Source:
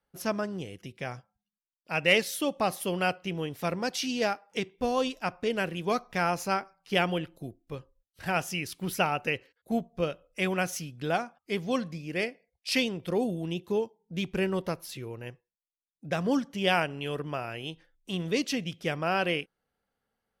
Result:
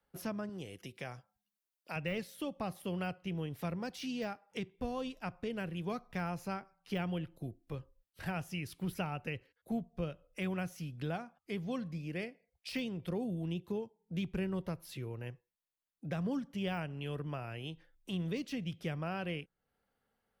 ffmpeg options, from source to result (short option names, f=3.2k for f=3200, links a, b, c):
-filter_complex "[0:a]asettb=1/sr,asplit=3[a][b][c];[a]atrim=end=0.494[d];[b]atrim=start=0.49:end=1.96,asetpts=PTS-STARTPTS,afade=t=in:d=0.004:c=qsin,afade=t=out:st=1.466:d=0.004:c=qsin,bass=f=250:g=-7,treble=f=4k:g=5[e];[c]atrim=start=1.956[f];[d][e]acrossfade=d=0.004:c1=hsin:c2=qsin[g];[g][f]acrossfade=d=0.004:c1=qsin:c2=hsin,deesser=0.75,equalizer=f=6.4k:t=o:w=1.1:g=-4.5,acrossover=split=170[h][i];[i]acompressor=threshold=-49dB:ratio=2[j];[h][j]amix=inputs=2:normalize=0,volume=1dB"